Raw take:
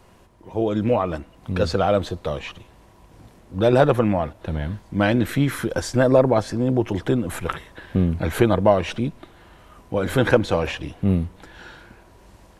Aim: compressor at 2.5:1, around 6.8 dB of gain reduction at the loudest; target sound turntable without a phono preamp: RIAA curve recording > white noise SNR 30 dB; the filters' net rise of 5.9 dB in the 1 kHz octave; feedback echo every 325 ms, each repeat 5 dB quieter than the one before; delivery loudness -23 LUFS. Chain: peaking EQ 1 kHz +8.5 dB; compression 2.5:1, threshold -17 dBFS; RIAA curve recording; feedback delay 325 ms, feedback 56%, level -5 dB; white noise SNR 30 dB; trim +1 dB

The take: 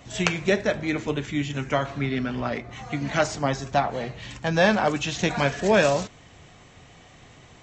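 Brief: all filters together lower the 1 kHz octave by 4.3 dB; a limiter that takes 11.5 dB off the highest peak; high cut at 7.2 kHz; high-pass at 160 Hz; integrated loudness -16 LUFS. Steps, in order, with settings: high-pass 160 Hz; low-pass 7.2 kHz; peaking EQ 1 kHz -6.5 dB; trim +13 dB; peak limiter -4 dBFS

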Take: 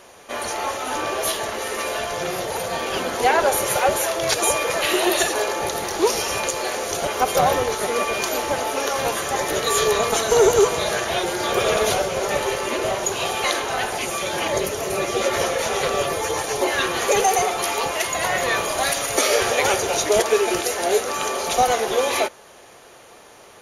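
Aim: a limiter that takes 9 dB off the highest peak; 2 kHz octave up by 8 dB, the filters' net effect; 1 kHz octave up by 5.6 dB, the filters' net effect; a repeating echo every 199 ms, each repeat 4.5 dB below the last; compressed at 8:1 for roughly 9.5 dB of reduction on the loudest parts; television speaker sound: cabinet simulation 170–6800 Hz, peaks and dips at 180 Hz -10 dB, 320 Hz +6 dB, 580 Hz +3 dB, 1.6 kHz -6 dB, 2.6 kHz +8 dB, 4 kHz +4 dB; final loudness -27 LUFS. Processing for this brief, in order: peaking EQ 1 kHz +6 dB; peaking EQ 2 kHz +6.5 dB; compression 8:1, threshold -19 dBFS; peak limiter -14.5 dBFS; cabinet simulation 170–6800 Hz, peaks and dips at 180 Hz -10 dB, 320 Hz +6 dB, 580 Hz +3 dB, 1.6 kHz -6 dB, 2.6 kHz +8 dB, 4 kHz +4 dB; feedback delay 199 ms, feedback 60%, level -4.5 dB; trim -6.5 dB

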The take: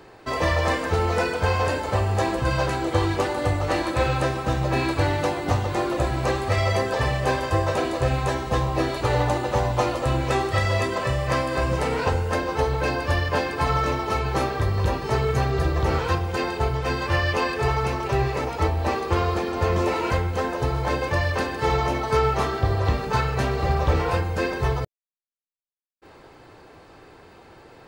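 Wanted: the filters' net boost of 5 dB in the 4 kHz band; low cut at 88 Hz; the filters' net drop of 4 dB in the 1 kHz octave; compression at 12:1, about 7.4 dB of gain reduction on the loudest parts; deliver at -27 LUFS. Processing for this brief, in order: high-pass 88 Hz; peaking EQ 1 kHz -5.5 dB; peaking EQ 4 kHz +6.5 dB; compression 12:1, threshold -26 dBFS; trim +3.5 dB

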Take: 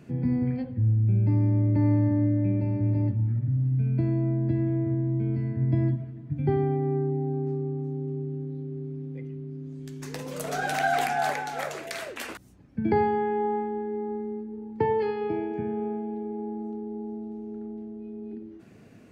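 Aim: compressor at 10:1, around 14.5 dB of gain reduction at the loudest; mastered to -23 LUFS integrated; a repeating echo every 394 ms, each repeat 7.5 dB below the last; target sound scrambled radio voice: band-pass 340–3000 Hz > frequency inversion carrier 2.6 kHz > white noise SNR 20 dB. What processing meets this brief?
compression 10:1, threshold -34 dBFS; band-pass 340–3000 Hz; feedback delay 394 ms, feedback 42%, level -7.5 dB; frequency inversion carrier 2.6 kHz; white noise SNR 20 dB; trim +15 dB

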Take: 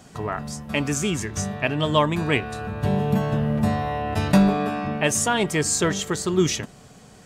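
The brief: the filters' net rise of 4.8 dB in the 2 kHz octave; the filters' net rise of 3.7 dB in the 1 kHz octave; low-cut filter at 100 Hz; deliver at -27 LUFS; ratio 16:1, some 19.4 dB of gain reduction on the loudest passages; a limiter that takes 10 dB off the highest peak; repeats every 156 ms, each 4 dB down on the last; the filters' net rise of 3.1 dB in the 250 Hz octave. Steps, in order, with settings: high-pass 100 Hz; peaking EQ 250 Hz +4.5 dB; peaking EQ 1 kHz +3.5 dB; peaking EQ 2 kHz +5 dB; compression 16:1, threshold -29 dBFS; peak limiter -25 dBFS; feedback delay 156 ms, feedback 63%, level -4 dB; trim +6.5 dB

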